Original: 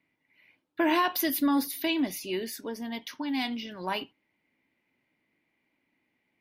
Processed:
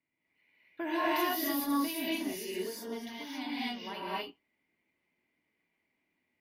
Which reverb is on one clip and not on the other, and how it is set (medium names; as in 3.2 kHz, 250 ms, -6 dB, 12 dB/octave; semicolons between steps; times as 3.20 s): gated-style reverb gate 290 ms rising, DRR -8 dB; trim -12.5 dB